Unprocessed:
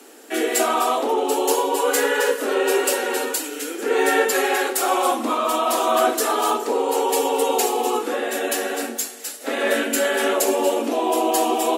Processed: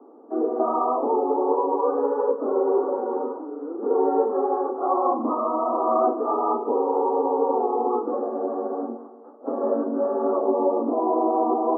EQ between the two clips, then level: Chebyshev low-pass 1.2 kHz, order 6; peaking EQ 220 Hz +2 dB 1.6 oct; -1.5 dB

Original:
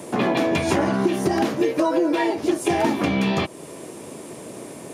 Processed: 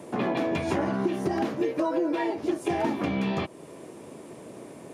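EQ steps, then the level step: treble shelf 3.7 kHz -8.5 dB; -6.0 dB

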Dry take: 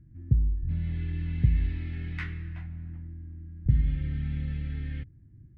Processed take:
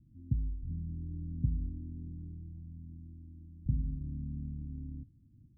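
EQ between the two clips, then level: four-pole ladder low-pass 300 Hz, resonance 55%; 0.0 dB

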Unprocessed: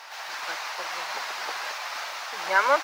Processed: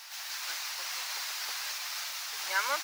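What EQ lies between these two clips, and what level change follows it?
pre-emphasis filter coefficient 0.97; peaking EQ 280 Hz +7 dB 0.82 oct; +5.0 dB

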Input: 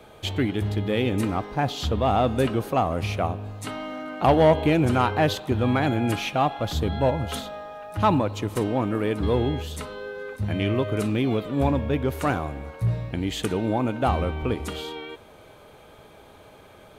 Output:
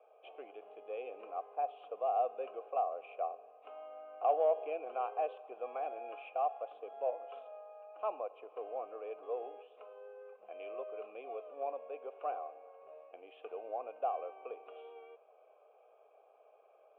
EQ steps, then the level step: vowel filter a; ladder high-pass 420 Hz, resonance 65%; steep low-pass 3.1 kHz 48 dB/octave; +1.0 dB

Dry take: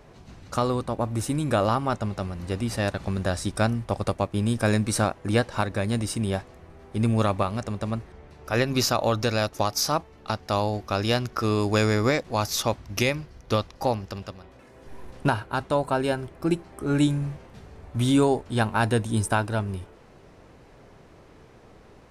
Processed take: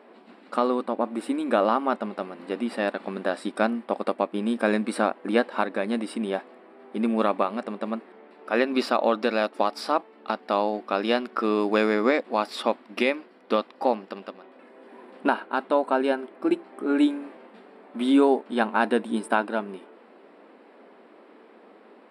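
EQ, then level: boxcar filter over 7 samples; brick-wall FIR high-pass 200 Hz; +2.0 dB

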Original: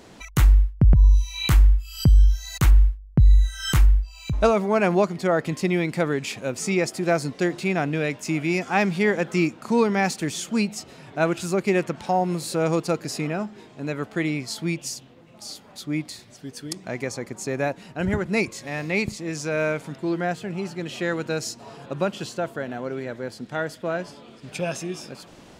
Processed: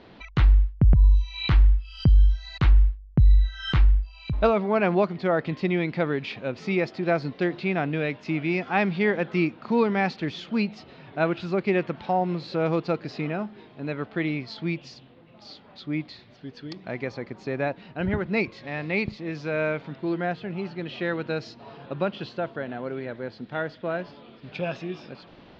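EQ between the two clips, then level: steep low-pass 4.3 kHz 36 dB/octave; -2.0 dB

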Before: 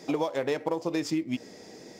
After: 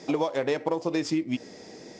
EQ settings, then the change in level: low-pass 7.5 kHz 24 dB/octave; +2.0 dB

